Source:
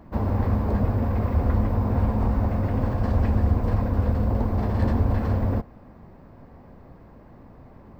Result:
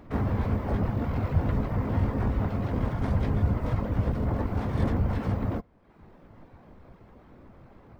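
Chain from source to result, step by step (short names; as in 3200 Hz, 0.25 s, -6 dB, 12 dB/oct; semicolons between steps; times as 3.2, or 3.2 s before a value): reverb removal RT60 0.88 s; harmoniser +4 st -4 dB, +12 st -7 dB; gain -4 dB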